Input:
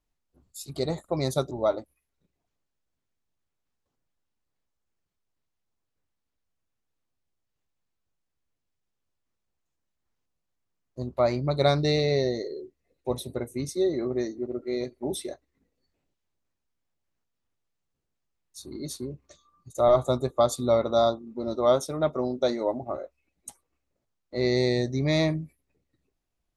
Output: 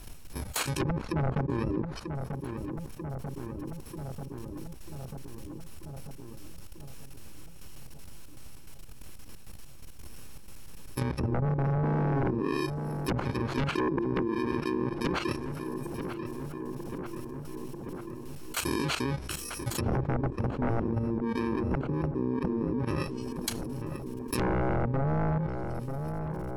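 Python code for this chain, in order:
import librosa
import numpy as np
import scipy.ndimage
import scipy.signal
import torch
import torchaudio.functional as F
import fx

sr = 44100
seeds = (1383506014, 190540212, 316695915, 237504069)

y = fx.bit_reversed(x, sr, seeds[0], block=64)
y = fx.env_lowpass_down(y, sr, base_hz=510.0, full_db=-23.5)
y = fx.high_shelf(y, sr, hz=2500.0, db=-2.5)
y = fx.level_steps(y, sr, step_db=16)
y = fx.fold_sine(y, sr, drive_db=15, ceiling_db=-17.5)
y = fx.echo_filtered(y, sr, ms=940, feedback_pct=51, hz=1800.0, wet_db=-21.5)
y = fx.env_flatten(y, sr, amount_pct=70)
y = y * librosa.db_to_amplitude(-7.5)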